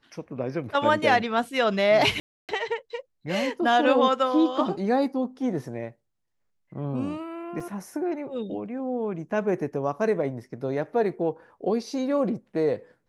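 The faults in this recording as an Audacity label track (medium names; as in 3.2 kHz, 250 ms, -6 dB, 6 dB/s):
2.200000	2.490000	dropout 288 ms
7.600000	7.600000	dropout 4.5 ms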